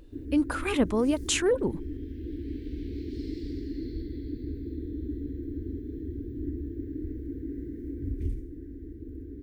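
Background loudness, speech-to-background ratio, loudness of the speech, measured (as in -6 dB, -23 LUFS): -37.5 LUFS, 10.5 dB, -27.0 LUFS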